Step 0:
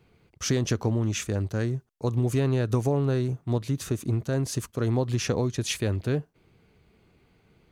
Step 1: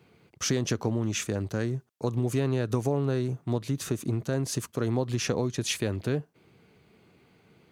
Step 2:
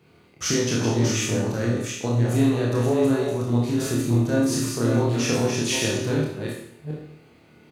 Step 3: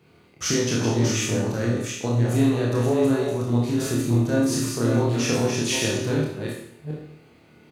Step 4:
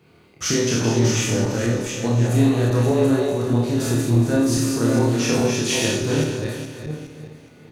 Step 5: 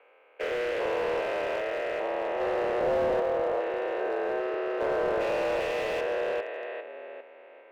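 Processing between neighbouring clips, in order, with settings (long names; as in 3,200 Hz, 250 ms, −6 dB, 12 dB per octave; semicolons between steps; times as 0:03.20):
high-pass filter 120 Hz 12 dB per octave; in parallel at +3 dB: downward compressor, threshold −32 dBFS, peak gain reduction 12 dB; on the sum: level −4.5 dB
delay that plays each chunk backwards 384 ms, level −5 dB; double-tracking delay 26 ms −5 dB; four-comb reverb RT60 0.67 s, combs from 26 ms, DRR −1.5 dB
no processing that can be heard
feedback delay that plays each chunk backwards 208 ms, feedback 59%, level −9 dB; level +2 dB
spectrum averaged block by block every 400 ms; single-sideband voice off tune +100 Hz 380–2,600 Hz; slew-rate limiting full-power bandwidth 44 Hz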